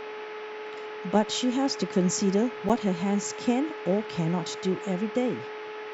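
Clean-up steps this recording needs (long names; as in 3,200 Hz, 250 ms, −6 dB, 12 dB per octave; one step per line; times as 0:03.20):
hum removal 427 Hz, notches 14
repair the gap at 0:02.69, 6.4 ms
noise reduction from a noise print 30 dB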